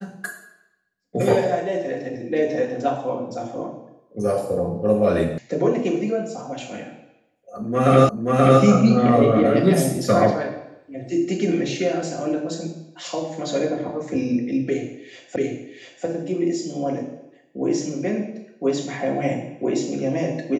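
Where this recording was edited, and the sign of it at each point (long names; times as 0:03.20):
0:05.38: cut off before it has died away
0:08.09: the same again, the last 0.53 s
0:15.36: the same again, the last 0.69 s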